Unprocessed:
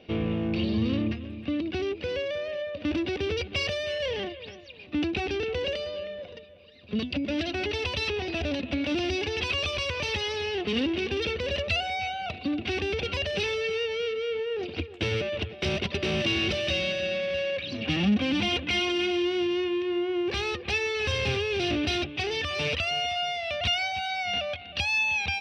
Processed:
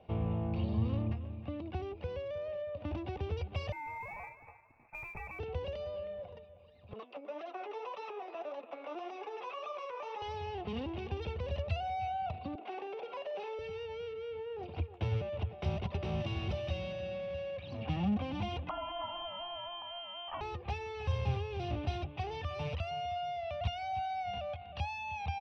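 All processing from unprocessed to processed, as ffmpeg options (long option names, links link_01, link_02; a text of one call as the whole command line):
ffmpeg -i in.wav -filter_complex "[0:a]asettb=1/sr,asplit=3[link_01][link_02][link_03];[link_01]atrim=end=3.724[link_04];[link_02]atrim=start=3.72:end=5.39,asetpts=PTS-STARTPTS,afade=type=in:duration=0.004:curve=qsin,afade=type=out:start_time=1.666:duration=0.004:curve=qsin,aeval=exprs='sgn(val(0))*max(abs(val(0))-0.00211,0)':channel_layout=same,lowpass=frequency=2300:width_type=q:width=0.5098,lowpass=frequency=2300:width_type=q:width=0.6013,lowpass=frequency=2300:width_type=q:width=0.9,lowpass=frequency=2300:width_type=q:width=2.563,afreqshift=-2700,acrusher=bits=5:mode=log:mix=0:aa=0.000001[link_05];[link_03]atrim=start=5.386[link_06];[link_04][link_05]acrossfade=duration=0.004:curve1=hsin:curve2=qsin[link_07];[link_07][link_06]acrossfade=duration=0.004:curve1=qsin:curve2=hsin,asettb=1/sr,asplit=3[link_08][link_09][link_10];[link_08]atrim=end=6.934[link_11];[link_09]atrim=start=6.93:end=10.22,asetpts=PTS-STARTPTS,afade=type=in:duration=0.004:curve=qsin,afade=type=out:start_time=3.286:duration=0.004:curve=qsin,flanger=delay=3.2:depth=8.3:regen=43:speed=1.8:shape=triangular,highpass=frequency=360:width=0.5412,highpass=frequency=360:width=1.3066,equalizer=frequency=470:width_type=q:width=4:gain=5,equalizer=frequency=1200:width_type=q:width=4:gain=9,equalizer=frequency=3100:width_type=q:width=4:gain=-4,equalizer=frequency=4500:width_type=q:width=4:gain=-8,lowpass=frequency=7200:width=0.5412,lowpass=frequency=7200:width=1.3066[link_12];[link_10]atrim=start=10.216[link_13];[link_11][link_12]acrossfade=duration=0.004:curve1=hsin:curve2=qsin[link_14];[link_14][link_13]acrossfade=duration=0.004:curve1=qsin:curve2=hsin,asettb=1/sr,asplit=3[link_15][link_16][link_17];[link_15]atrim=end=12.554[link_18];[link_16]atrim=start=12.55:end=13.59,asetpts=PTS-STARTPTS,afade=type=in:duration=0.004:curve=qsin,afade=type=out:start_time=1.036:duration=0.004:curve=qsin,highpass=frequency=350:width=0.5412,highpass=frequency=350:width=1.3066,highshelf=frequency=3000:gain=-10.5,asplit=2[link_19][link_20];[link_20]adelay=50,volume=-9.5dB[link_21];[link_19][link_21]amix=inputs=2:normalize=0,atrim=end_sample=45864[link_22];[link_17]atrim=start=13.586[link_23];[link_18][link_22]acrossfade=duration=0.004:curve1=hsin:curve2=qsin[link_24];[link_24][link_23]acrossfade=duration=0.004:curve1=qsin:curve2=hsin,asettb=1/sr,asplit=3[link_25][link_26][link_27];[link_25]atrim=end=18.694[link_28];[link_26]atrim=start=18.69:end=20.41,asetpts=PTS-STARTPTS,afade=type=in:duration=0.004:curve=qsin,afade=type=out:start_time=1.716:duration=0.004:curve=qsin,highpass=300,lowpass=frequency=3000:width_type=q:width=0.5098,lowpass=frequency=3000:width_type=q:width=0.6013,lowpass=frequency=3000:width_type=q:width=0.9,lowpass=frequency=3000:width_type=q:width=2.563,afreqshift=-3500[link_29];[link_27]atrim=start=20.406[link_30];[link_28][link_29]acrossfade=duration=0.004:curve1=hsin:curve2=qsin[link_31];[link_31][link_30]acrossfade=duration=0.004:curve1=qsin:curve2=hsin,equalizer=frequency=4300:width=2.3:gain=-2.5,acrossover=split=330|3000[link_32][link_33][link_34];[link_33]acompressor=threshold=-33dB:ratio=6[link_35];[link_32][link_35][link_34]amix=inputs=3:normalize=0,firequalizer=gain_entry='entry(110,0);entry(270,-14);entry(830,3);entry(1600,-14);entry(4500,-18);entry(8200,-23)':delay=0.05:min_phase=1" out.wav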